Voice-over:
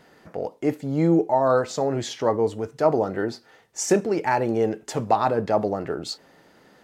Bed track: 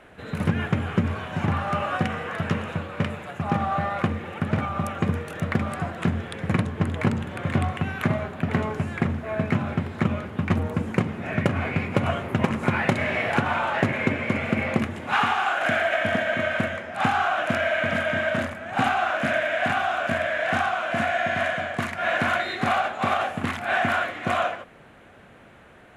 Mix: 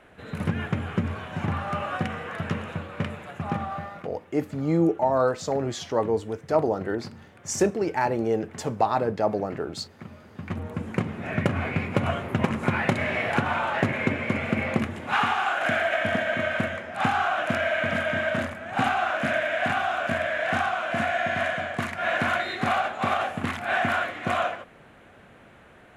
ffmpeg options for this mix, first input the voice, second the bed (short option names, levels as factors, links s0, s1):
-filter_complex "[0:a]adelay=3700,volume=0.75[s0];[1:a]volume=5.01,afade=t=out:st=3.46:d=0.61:silence=0.16788,afade=t=in:st=10.19:d=1.06:silence=0.133352[s1];[s0][s1]amix=inputs=2:normalize=0"